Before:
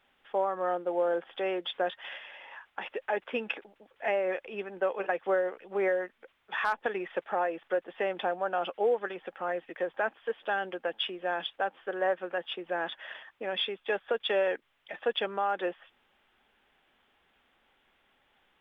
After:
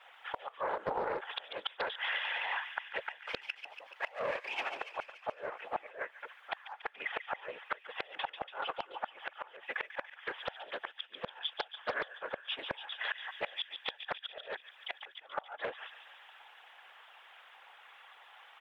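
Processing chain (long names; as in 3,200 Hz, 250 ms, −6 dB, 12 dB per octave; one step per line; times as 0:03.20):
0:03.09–0:04.78: gain on one half-wave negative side −7 dB
high-pass filter 790 Hz 24 dB per octave
spectral tilt −2.5 dB per octave
comb filter 3.6 ms, depth 88%
downward compressor 16 to 1, threshold −43 dBFS, peak gain reduction 20.5 dB
pitch vibrato 8.4 Hz 30 cents
random phases in short frames
gate with flip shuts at −35 dBFS, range −25 dB
delay with a high-pass on its return 143 ms, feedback 67%, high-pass 2,500 Hz, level −6 dB
highs frequency-modulated by the lows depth 0.46 ms
level +12.5 dB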